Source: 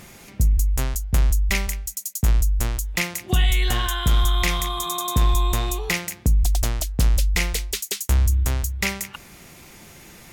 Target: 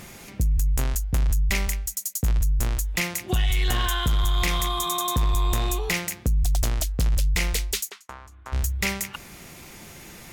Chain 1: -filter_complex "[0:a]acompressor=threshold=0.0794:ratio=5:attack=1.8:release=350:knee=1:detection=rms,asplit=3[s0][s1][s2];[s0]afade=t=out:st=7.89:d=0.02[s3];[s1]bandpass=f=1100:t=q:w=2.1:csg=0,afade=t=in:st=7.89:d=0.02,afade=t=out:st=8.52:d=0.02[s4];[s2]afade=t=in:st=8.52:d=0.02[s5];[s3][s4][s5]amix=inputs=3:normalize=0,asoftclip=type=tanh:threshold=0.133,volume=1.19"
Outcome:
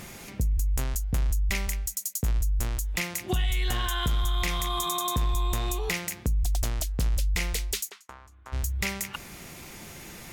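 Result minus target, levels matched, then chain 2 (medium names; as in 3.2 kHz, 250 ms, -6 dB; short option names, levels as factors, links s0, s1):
compression: peak gain reduction +6 dB
-filter_complex "[0:a]acompressor=threshold=0.188:ratio=5:attack=1.8:release=350:knee=1:detection=rms,asplit=3[s0][s1][s2];[s0]afade=t=out:st=7.89:d=0.02[s3];[s1]bandpass=f=1100:t=q:w=2.1:csg=0,afade=t=in:st=7.89:d=0.02,afade=t=out:st=8.52:d=0.02[s4];[s2]afade=t=in:st=8.52:d=0.02[s5];[s3][s4][s5]amix=inputs=3:normalize=0,asoftclip=type=tanh:threshold=0.133,volume=1.19"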